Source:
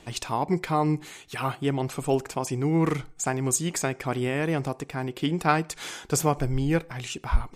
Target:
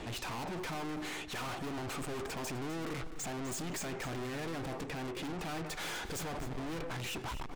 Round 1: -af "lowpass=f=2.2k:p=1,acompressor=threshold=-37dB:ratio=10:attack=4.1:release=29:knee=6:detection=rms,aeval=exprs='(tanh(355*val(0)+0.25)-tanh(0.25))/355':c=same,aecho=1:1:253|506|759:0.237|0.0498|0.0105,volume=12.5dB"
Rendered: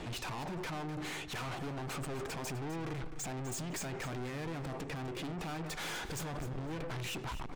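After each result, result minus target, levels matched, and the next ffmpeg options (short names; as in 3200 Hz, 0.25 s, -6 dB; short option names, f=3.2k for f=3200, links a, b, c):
compressor: peak gain reduction +8 dB; 125 Hz band +3.5 dB
-af "lowpass=f=2.2k:p=1,acompressor=threshold=-28dB:ratio=10:attack=4.1:release=29:knee=6:detection=rms,aeval=exprs='(tanh(355*val(0)+0.25)-tanh(0.25))/355':c=same,aecho=1:1:253|506|759:0.237|0.0498|0.0105,volume=12.5dB"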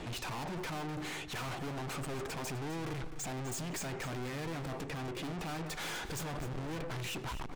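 125 Hz band +3.0 dB
-af "lowpass=f=2.2k:p=1,equalizer=f=140:w=3.2:g=-8,acompressor=threshold=-28dB:ratio=10:attack=4.1:release=29:knee=6:detection=rms,aeval=exprs='(tanh(355*val(0)+0.25)-tanh(0.25))/355':c=same,aecho=1:1:253|506|759:0.237|0.0498|0.0105,volume=12.5dB"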